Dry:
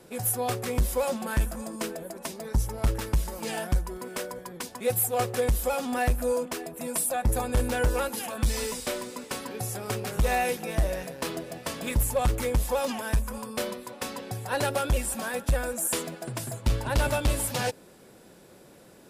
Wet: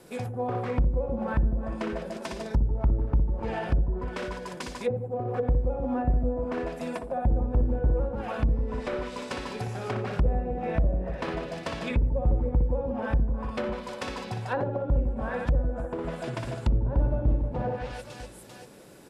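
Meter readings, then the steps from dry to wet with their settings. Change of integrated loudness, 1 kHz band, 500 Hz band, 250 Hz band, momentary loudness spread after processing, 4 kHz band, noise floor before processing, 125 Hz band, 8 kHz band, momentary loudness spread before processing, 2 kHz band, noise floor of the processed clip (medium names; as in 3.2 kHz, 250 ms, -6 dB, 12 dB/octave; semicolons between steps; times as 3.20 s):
-0.5 dB, -3.0 dB, -1.0 dB, +2.0 dB, 9 LU, -8.0 dB, -53 dBFS, +2.5 dB, -20.0 dB, 9 LU, -5.0 dB, -44 dBFS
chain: reverse bouncing-ball echo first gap 60 ms, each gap 1.6×, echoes 5; low-pass that closes with the level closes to 430 Hz, closed at -21 dBFS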